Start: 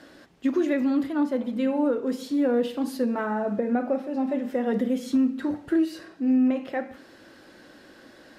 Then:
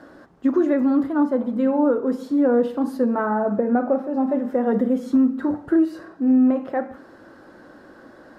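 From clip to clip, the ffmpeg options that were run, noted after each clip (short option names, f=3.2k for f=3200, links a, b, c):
-af "highshelf=f=1.8k:t=q:w=1.5:g=-10.5,volume=4.5dB"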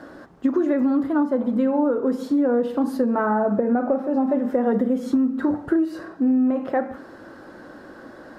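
-af "acompressor=threshold=-21dB:ratio=6,volume=4dB"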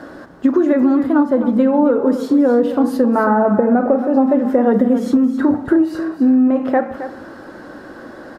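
-af "aecho=1:1:268:0.266,volume=6.5dB"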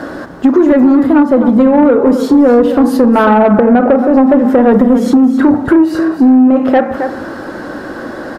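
-filter_complex "[0:a]asplit=2[a][b];[b]acompressor=threshold=-22dB:ratio=6,volume=-2.5dB[c];[a][c]amix=inputs=2:normalize=0,asoftclip=type=tanh:threshold=-7.5dB,volume=6.5dB"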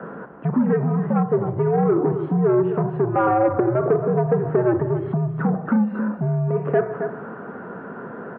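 -filter_complex "[0:a]highpass=f=160:t=q:w=0.5412,highpass=f=160:t=q:w=1.307,lowpass=f=3.1k:t=q:w=0.5176,lowpass=f=3.1k:t=q:w=0.7071,lowpass=f=3.1k:t=q:w=1.932,afreqshift=-110,acrossover=split=170 2100:gain=0.112 1 0.0794[a][b][c];[a][b][c]amix=inputs=3:normalize=0,volume=-8.5dB"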